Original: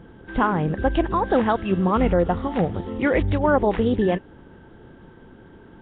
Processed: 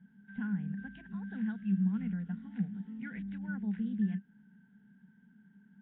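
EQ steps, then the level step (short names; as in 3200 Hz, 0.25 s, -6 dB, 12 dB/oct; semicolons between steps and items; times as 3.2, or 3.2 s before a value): dynamic EQ 870 Hz, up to -6 dB, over -32 dBFS, Q 1.2; double band-pass 550 Hz, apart 2.9 oct; fixed phaser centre 330 Hz, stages 6; -3.0 dB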